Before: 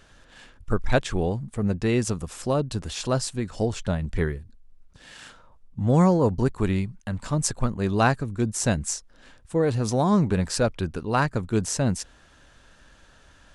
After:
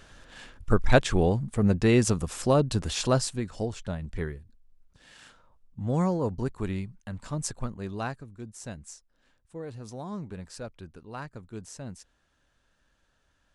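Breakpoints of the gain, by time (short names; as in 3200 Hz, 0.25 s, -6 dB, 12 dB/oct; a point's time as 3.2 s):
3.03 s +2 dB
3.76 s -7.5 dB
7.55 s -7.5 dB
8.39 s -16.5 dB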